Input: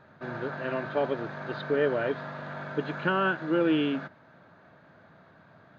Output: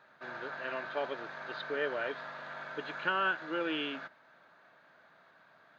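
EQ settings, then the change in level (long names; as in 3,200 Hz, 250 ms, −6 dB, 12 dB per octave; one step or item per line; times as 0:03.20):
high-pass filter 1,300 Hz 6 dB per octave
0.0 dB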